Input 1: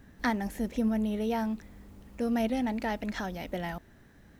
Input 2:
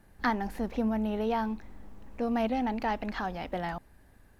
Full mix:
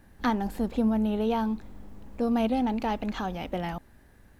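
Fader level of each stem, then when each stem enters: -5.5, +1.0 dB; 0.00, 0.00 s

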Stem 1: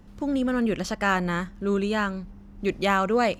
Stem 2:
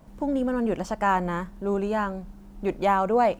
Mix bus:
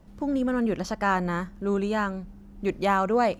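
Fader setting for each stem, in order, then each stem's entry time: -5.0, -7.5 dB; 0.00, 0.00 s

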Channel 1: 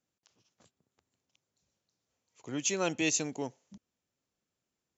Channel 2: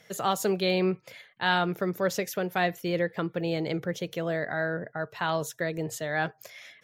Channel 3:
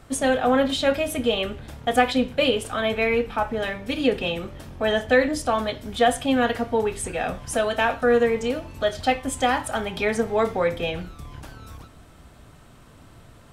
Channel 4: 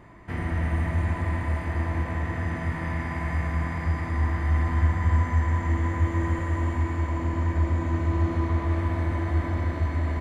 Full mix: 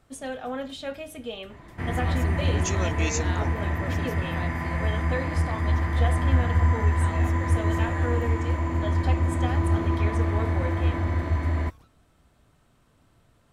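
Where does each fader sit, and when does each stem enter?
-1.0, -13.0, -13.0, +1.0 dB; 0.00, 1.80, 0.00, 1.50 s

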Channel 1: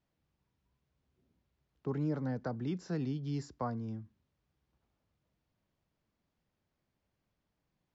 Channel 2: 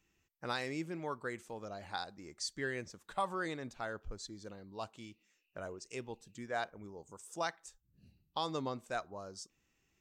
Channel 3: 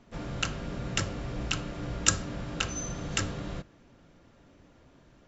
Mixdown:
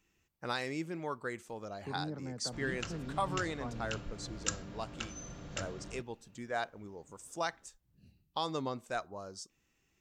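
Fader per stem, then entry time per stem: -7.0, +1.5, -11.0 dB; 0.00, 0.00, 2.40 s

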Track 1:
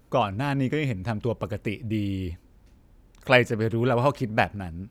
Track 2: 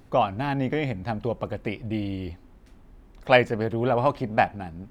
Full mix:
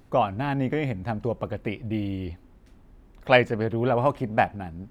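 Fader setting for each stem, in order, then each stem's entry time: -11.5, -2.5 dB; 0.00, 0.00 s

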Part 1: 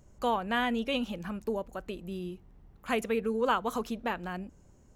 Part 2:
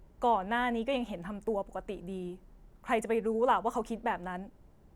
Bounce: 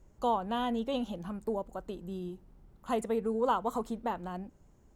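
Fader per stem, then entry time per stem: -7.5, -4.5 dB; 0.00, 0.00 s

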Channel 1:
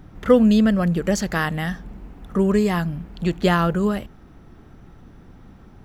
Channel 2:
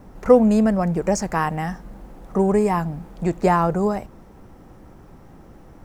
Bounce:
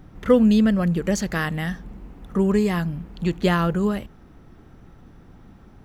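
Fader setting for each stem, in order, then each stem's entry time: -2.0, -16.0 dB; 0.00, 0.00 s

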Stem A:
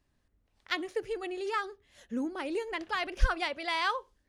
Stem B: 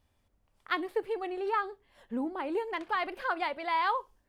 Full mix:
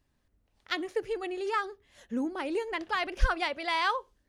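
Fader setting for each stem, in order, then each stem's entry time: 0.0, -12.0 dB; 0.00, 0.00 s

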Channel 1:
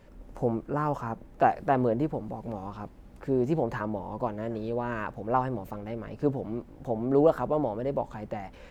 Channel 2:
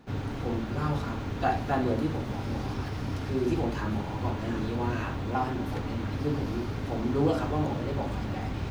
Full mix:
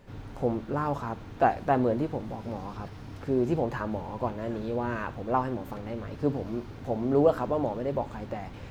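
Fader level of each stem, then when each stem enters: -0.5, -10.0 dB; 0.00, 0.00 s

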